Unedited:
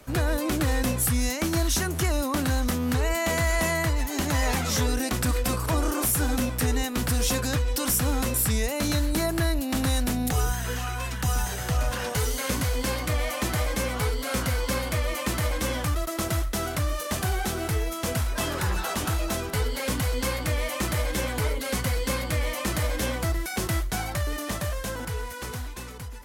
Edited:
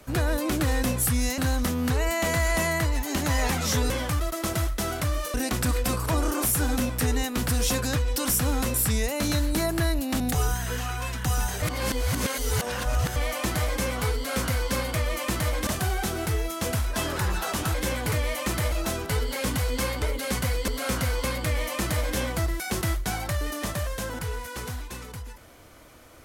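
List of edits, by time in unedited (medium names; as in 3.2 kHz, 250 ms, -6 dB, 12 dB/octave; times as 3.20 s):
1.38–2.42 s: delete
9.80–10.18 s: delete
11.60–13.14 s: reverse
14.13–14.69 s: copy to 22.10 s
15.65–17.09 s: move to 4.94 s
19.16–20.46 s: swap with 21.06–21.44 s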